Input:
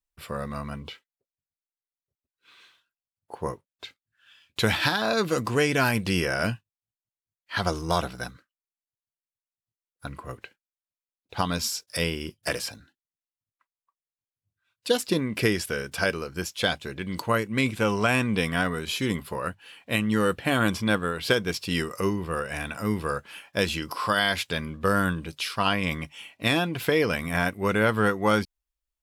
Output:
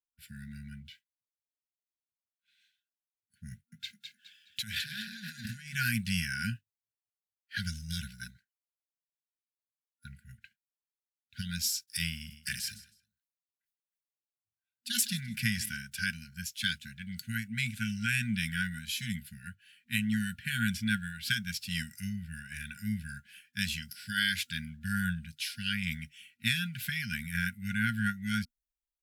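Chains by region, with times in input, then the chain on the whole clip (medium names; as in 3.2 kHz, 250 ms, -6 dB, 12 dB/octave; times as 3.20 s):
3.51–5.74 s: frequency-shifting echo 209 ms, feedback 43%, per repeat +44 Hz, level -4.5 dB + compressor with a negative ratio -31 dBFS
12.12–15.77 s: feedback delay 159 ms, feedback 27%, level -17.5 dB + decay stretcher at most 94 dB/s
whole clip: treble shelf 11 kHz +8 dB; FFT band-reject 240–1400 Hz; three bands expanded up and down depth 40%; trim -6 dB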